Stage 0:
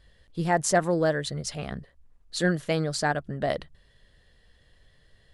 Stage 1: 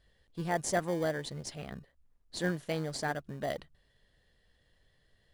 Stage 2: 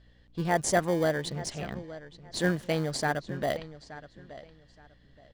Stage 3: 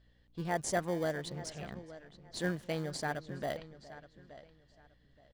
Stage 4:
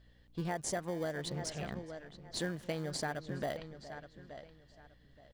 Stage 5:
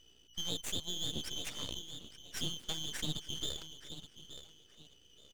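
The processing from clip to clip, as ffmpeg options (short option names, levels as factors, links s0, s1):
-filter_complex "[0:a]lowshelf=f=130:g=-5,asplit=2[s0][s1];[s1]acrusher=samples=33:mix=1:aa=0.000001,volume=0.282[s2];[s0][s2]amix=inputs=2:normalize=0,volume=0.376"
-filter_complex "[0:a]aeval=exprs='val(0)+0.000501*(sin(2*PI*60*n/s)+sin(2*PI*2*60*n/s)/2+sin(2*PI*3*60*n/s)/3+sin(2*PI*4*60*n/s)/4+sin(2*PI*5*60*n/s)/5)':c=same,acrossover=split=6900[s0][s1];[s0]aecho=1:1:873|1746:0.158|0.0365[s2];[s1]aeval=exprs='val(0)*gte(abs(val(0)),0.00126)':c=same[s3];[s2][s3]amix=inputs=2:normalize=0,volume=1.88"
-filter_complex "[0:a]asplit=2[s0][s1];[s1]adelay=414,volume=0.126,highshelf=f=4000:g=-9.32[s2];[s0][s2]amix=inputs=2:normalize=0,volume=0.422"
-af "acompressor=threshold=0.0158:ratio=12,volume=1.5"
-af "afftfilt=real='real(if(lt(b,272),68*(eq(floor(b/68),0)*1+eq(floor(b/68),1)*3+eq(floor(b/68),2)*0+eq(floor(b/68),3)*2)+mod(b,68),b),0)':imag='imag(if(lt(b,272),68*(eq(floor(b/68),0)*1+eq(floor(b/68),1)*3+eq(floor(b/68),2)*0+eq(floor(b/68),3)*2)+mod(b,68),b),0)':win_size=2048:overlap=0.75,lowshelf=f=440:g=8.5,aeval=exprs='max(val(0),0)':c=same,volume=1.19"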